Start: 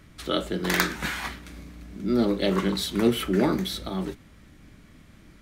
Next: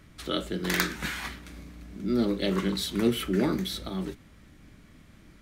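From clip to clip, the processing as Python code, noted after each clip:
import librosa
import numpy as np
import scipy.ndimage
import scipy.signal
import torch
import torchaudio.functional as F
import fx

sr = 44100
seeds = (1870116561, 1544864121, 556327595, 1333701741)

y = fx.dynamic_eq(x, sr, hz=790.0, q=1.0, threshold_db=-39.0, ratio=4.0, max_db=-5)
y = y * 10.0 ** (-2.0 / 20.0)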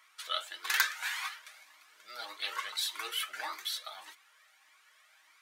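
y = scipy.signal.sosfilt(scipy.signal.butter(4, 870.0, 'highpass', fs=sr, output='sos'), x)
y = y + 0.43 * np.pad(y, (int(6.4 * sr / 1000.0), 0))[:len(y)]
y = fx.comb_cascade(y, sr, direction='rising', hz=1.7)
y = y * 10.0 ** (3.0 / 20.0)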